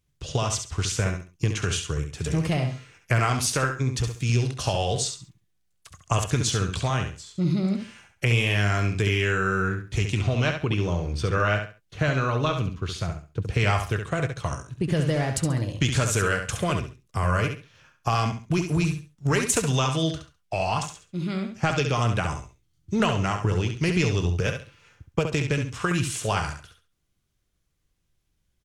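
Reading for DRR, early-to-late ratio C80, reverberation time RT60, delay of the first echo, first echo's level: none, none, none, 68 ms, -7.0 dB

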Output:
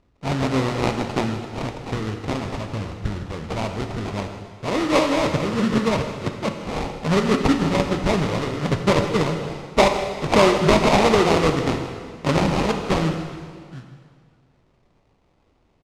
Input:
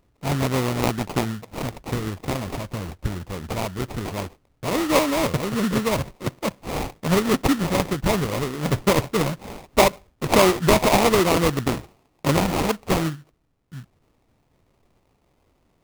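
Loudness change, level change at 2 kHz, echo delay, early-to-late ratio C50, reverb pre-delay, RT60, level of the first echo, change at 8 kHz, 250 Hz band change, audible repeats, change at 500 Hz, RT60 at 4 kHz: +1.0 dB, +1.0 dB, 0.158 s, 6.0 dB, 5 ms, 2.0 s, -15.0 dB, -4.5 dB, +1.5 dB, 1, +1.5 dB, 1.9 s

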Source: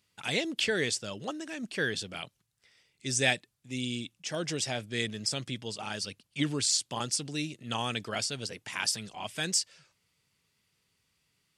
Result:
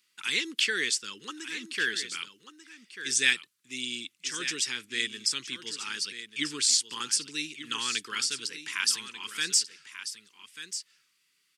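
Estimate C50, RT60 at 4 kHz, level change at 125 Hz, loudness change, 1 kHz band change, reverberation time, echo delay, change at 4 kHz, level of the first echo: none, none, -17.0 dB, +3.0 dB, -3.5 dB, none, 1.19 s, +4.5 dB, -11.5 dB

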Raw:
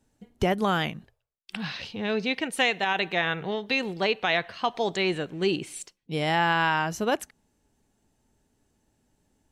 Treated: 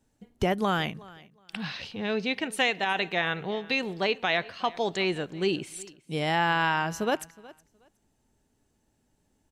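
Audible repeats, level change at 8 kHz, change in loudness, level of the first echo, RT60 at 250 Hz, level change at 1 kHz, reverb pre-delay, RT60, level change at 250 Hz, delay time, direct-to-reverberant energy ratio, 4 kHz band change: 1, -1.5 dB, -1.5 dB, -21.5 dB, none, -1.5 dB, none, none, -1.5 dB, 0.367 s, none, -1.5 dB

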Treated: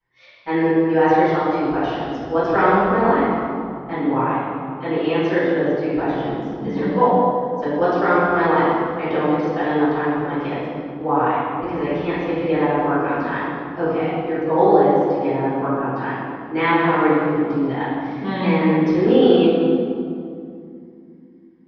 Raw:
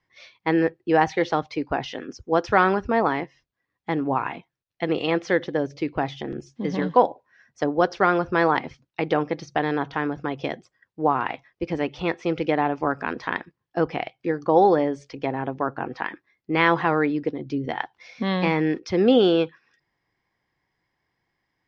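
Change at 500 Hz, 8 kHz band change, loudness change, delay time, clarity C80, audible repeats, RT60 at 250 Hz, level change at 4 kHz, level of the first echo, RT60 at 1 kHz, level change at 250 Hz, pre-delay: +5.0 dB, n/a, +4.5 dB, none, -1.0 dB, none, 3.7 s, 0.0 dB, none, 2.4 s, +6.0 dB, 3 ms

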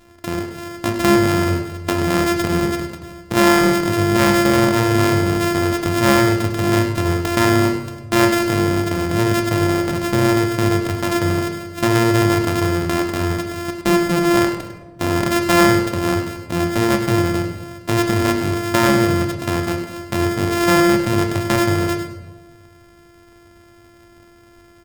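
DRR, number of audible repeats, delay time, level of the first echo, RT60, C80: 4.0 dB, 1, 0.101 s, -11.0 dB, 1.2 s, 8.0 dB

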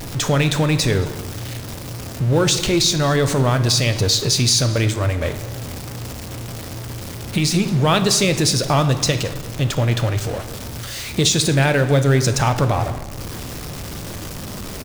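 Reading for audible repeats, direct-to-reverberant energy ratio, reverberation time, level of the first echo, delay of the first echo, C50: 1, 8.5 dB, 1.1 s, -21.0 dB, 0.222 s, 11.0 dB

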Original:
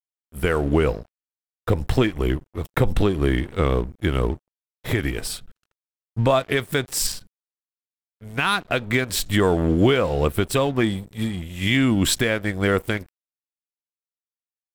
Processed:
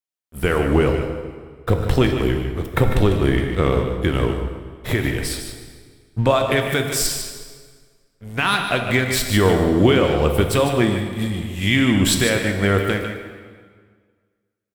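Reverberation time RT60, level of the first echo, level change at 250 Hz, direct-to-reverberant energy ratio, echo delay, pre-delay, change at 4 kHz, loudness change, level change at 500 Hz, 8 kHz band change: 1.7 s, -9.0 dB, +3.0 dB, 3.0 dB, 0.15 s, 5 ms, +3.5 dB, +3.0 dB, +3.0 dB, +3.0 dB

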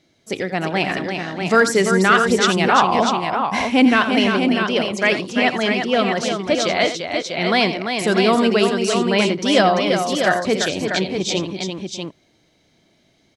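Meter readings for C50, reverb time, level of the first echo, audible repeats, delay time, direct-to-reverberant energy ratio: none, none, -11.5 dB, 4, 85 ms, none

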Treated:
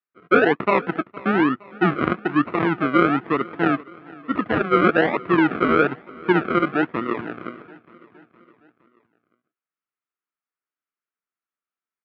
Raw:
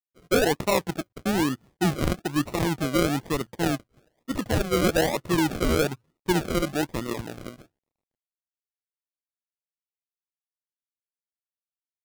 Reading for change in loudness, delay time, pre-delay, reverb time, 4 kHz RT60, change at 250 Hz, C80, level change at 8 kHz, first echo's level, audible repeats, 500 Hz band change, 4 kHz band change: +5.0 dB, 0.464 s, none, none, none, +5.0 dB, none, under -30 dB, -22.0 dB, 3, +4.5 dB, -4.5 dB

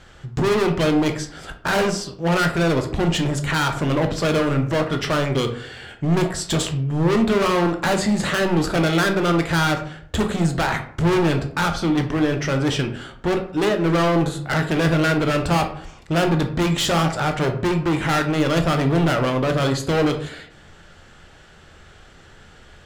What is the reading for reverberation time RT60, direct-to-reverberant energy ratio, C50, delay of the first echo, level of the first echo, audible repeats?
0.60 s, 5.0 dB, 9.5 dB, none, none, none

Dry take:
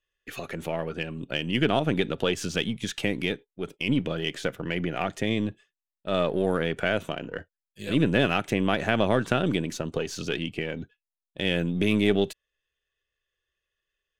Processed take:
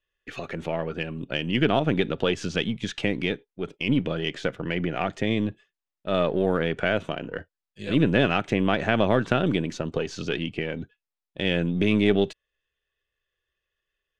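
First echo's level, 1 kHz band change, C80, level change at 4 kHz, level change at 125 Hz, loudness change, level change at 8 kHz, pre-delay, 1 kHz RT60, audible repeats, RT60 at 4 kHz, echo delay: none, +1.5 dB, none, 0.0 dB, +2.0 dB, +1.5 dB, n/a, none, none, none, none, none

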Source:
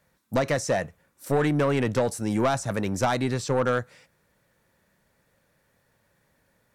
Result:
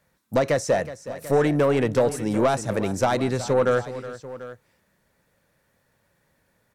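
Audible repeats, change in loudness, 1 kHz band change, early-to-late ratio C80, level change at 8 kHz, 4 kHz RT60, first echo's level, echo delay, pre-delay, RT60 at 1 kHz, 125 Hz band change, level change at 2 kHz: 2, +2.5 dB, +2.0 dB, none, +0.5 dB, none, -14.5 dB, 0.369 s, none, none, +0.5 dB, +0.5 dB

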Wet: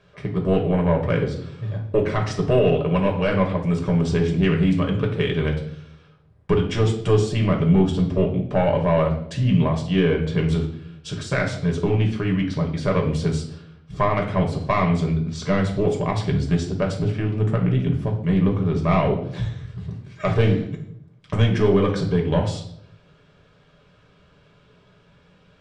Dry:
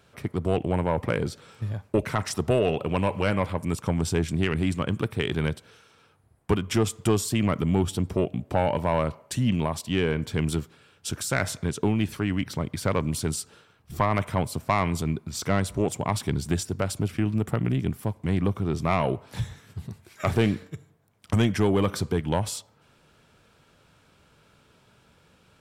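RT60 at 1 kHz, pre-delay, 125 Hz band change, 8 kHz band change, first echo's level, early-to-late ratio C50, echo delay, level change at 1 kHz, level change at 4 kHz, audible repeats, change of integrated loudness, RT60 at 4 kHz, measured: 0.55 s, 5 ms, +6.0 dB, -8.0 dB, none, 8.5 dB, none, +2.5 dB, +1.5 dB, none, +5.0 dB, 0.55 s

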